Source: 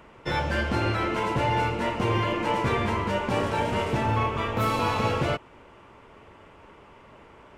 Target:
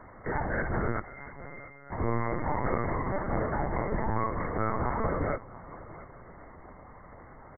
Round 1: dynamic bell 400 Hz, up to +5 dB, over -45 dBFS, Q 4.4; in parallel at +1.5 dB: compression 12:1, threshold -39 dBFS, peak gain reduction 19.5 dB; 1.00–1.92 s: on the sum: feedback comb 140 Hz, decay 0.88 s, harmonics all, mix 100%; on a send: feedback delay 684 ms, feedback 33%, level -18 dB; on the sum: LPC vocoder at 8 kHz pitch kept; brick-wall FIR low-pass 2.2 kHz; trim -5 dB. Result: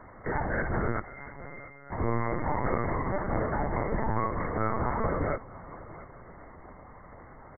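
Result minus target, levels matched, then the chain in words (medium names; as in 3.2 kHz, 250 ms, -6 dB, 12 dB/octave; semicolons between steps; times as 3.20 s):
compression: peak gain reduction -6.5 dB
dynamic bell 400 Hz, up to +5 dB, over -45 dBFS, Q 4.4; in parallel at +1.5 dB: compression 12:1, threshold -46 dBFS, peak gain reduction 26 dB; 1.00–1.92 s: on the sum: feedback comb 140 Hz, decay 0.88 s, harmonics all, mix 100%; on a send: feedback delay 684 ms, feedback 33%, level -18 dB; on the sum: LPC vocoder at 8 kHz pitch kept; brick-wall FIR low-pass 2.2 kHz; trim -5 dB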